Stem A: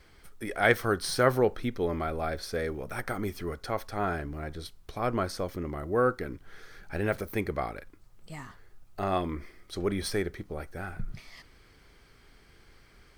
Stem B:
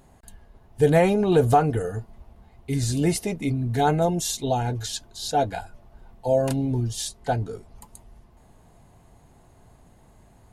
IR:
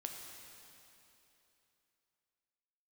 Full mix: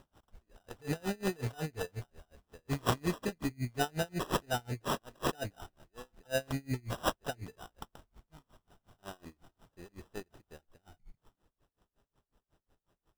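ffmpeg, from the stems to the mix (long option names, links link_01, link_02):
-filter_complex "[0:a]aeval=exprs='0.422*(cos(1*acos(clip(val(0)/0.422,-1,1)))-cos(1*PI/2))+0.0944*(cos(4*acos(clip(val(0)/0.422,-1,1)))-cos(4*PI/2))':channel_layout=same,volume=-12.5dB,afade=type=in:start_time=7.16:duration=0.59:silence=0.375837[link_01];[1:a]alimiter=limit=-13.5dB:level=0:latency=1:release=229,lowpass=frequency=7800:width_type=q:width=5.5,volume=-5.5dB[link_02];[link_01][link_02]amix=inputs=2:normalize=0,highshelf=frequency=8500:gain=9.5,acrusher=samples=20:mix=1:aa=0.000001,aeval=exprs='val(0)*pow(10,-31*(0.5-0.5*cos(2*PI*5.5*n/s))/20)':channel_layout=same"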